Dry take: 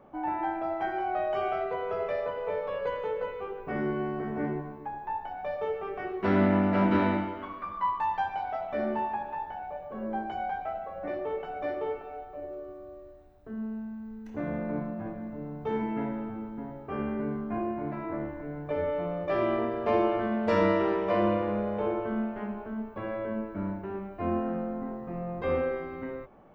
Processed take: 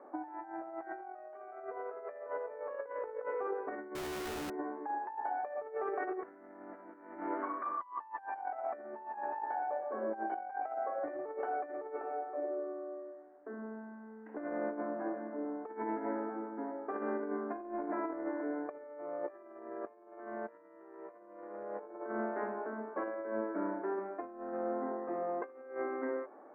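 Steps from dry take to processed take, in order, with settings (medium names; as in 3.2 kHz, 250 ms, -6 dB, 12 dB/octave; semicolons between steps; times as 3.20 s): elliptic band-pass 290–1800 Hz, stop band 40 dB; compressor with a negative ratio -37 dBFS, ratio -0.5; 3.95–4.50 s: Schmitt trigger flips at -57 dBFS; trim -2 dB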